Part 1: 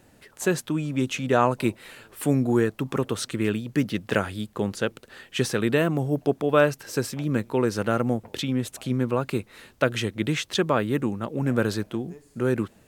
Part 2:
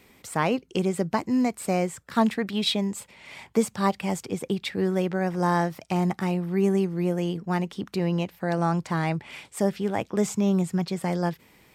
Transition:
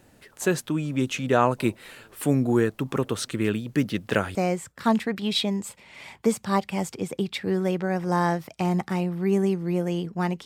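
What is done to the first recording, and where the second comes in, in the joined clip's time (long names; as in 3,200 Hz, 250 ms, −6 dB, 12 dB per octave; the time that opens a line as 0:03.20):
part 1
0:04.35: continue with part 2 from 0:01.66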